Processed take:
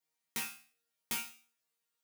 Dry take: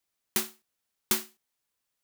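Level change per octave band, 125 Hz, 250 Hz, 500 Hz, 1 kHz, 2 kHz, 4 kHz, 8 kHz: -8.5 dB, -12.0 dB, -16.0 dB, -6.0 dB, -3.5 dB, -7.5 dB, -8.5 dB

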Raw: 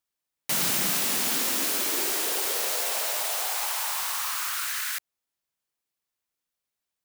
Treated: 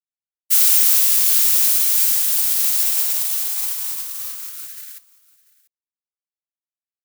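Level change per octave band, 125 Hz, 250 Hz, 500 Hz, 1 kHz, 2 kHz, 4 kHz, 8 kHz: no reading, under -20 dB, under -10 dB, -9.0 dB, -3.5 dB, +3.0 dB, +8.0 dB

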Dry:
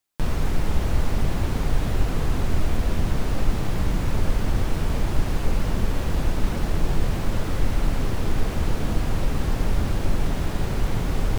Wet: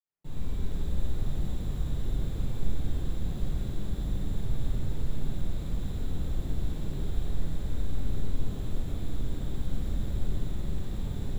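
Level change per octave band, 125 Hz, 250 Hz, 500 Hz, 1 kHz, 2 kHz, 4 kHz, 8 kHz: -8.0 dB, -9.5 dB, -13.0 dB, -18.0 dB, -18.0 dB, -12.0 dB, -13.0 dB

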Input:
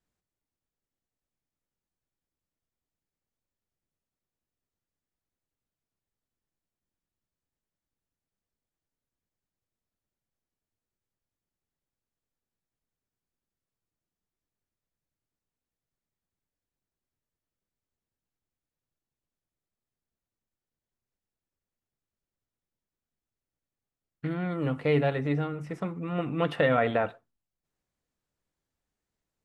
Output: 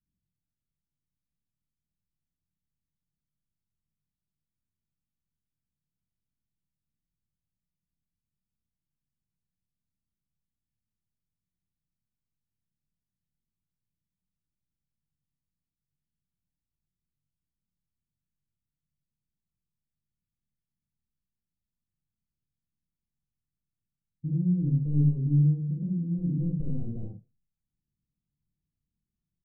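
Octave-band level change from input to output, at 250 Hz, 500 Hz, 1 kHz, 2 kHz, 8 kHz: +2.5 dB, -21.0 dB, under -35 dB, under -40 dB, no reading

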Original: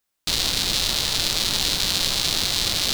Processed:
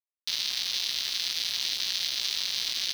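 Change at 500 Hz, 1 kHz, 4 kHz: under -20 dB, -16.5 dB, -6.5 dB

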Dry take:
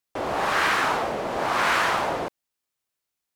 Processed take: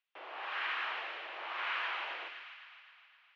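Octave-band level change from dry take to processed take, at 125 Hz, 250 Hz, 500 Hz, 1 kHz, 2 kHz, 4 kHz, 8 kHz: under -40 dB, -30.0 dB, -23.0 dB, -17.0 dB, -12.0 dB, -10.5 dB, under -30 dB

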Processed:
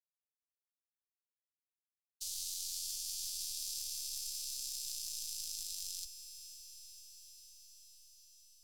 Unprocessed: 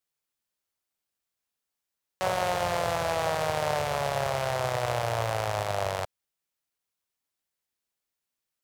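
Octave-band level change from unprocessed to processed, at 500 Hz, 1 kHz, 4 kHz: under -40 dB, under -40 dB, -4.0 dB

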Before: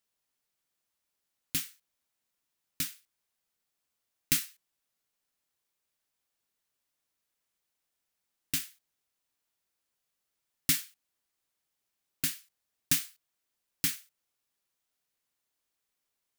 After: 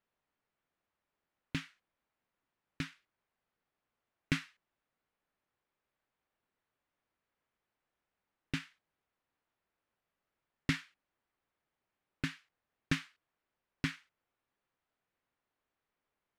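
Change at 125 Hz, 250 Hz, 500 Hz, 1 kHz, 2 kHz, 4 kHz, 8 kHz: +4.5 dB, +4.5 dB, +4.5 dB, +3.5 dB, +0.5 dB, -8.0 dB, -21.0 dB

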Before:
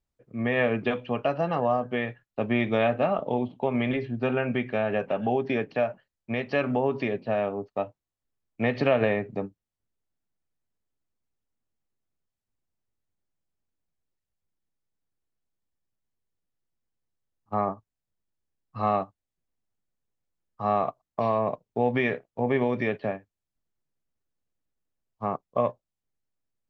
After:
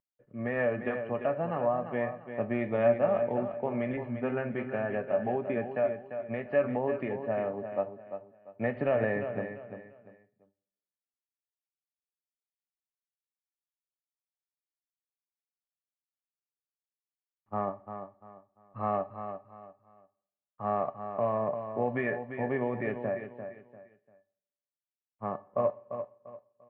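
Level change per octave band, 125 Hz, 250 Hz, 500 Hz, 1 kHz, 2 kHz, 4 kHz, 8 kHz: -5.5 dB, -6.0 dB, -2.5 dB, -5.5 dB, -6.0 dB, under -15 dB, no reading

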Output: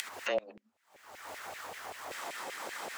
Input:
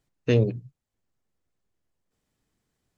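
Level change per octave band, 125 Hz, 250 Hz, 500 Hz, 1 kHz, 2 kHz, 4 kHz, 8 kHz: -37.0 dB, -20.5 dB, -8.5 dB, +12.5 dB, +3.5 dB, +1.5 dB, no reading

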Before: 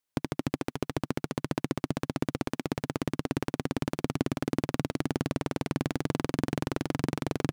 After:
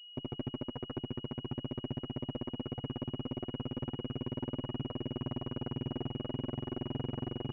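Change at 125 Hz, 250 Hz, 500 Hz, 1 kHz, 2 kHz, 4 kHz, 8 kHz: -5.0 dB, -7.0 dB, -7.5 dB, -11.0 dB, -16.5 dB, 0.0 dB, under -35 dB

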